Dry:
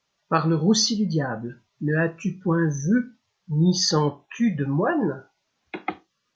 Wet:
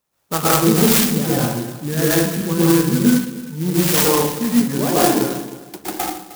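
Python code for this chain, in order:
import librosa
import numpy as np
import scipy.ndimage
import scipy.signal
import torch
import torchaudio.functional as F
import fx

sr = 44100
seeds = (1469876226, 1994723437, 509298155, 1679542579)

y = fx.highpass(x, sr, hz=170.0, slope=24, at=(2.91, 5.08), fade=0.02)
y = fx.echo_feedback(y, sr, ms=309, feedback_pct=20, wet_db=-16)
y = fx.rev_plate(y, sr, seeds[0], rt60_s=0.73, hf_ratio=0.85, predelay_ms=105, drr_db=-8.5)
y = fx.clock_jitter(y, sr, seeds[1], jitter_ms=0.12)
y = F.gain(torch.from_numpy(y), -1.0).numpy()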